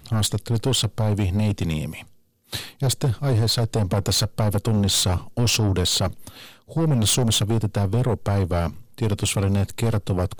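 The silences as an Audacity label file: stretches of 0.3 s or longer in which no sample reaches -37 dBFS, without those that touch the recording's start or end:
2.030000	2.530000	silence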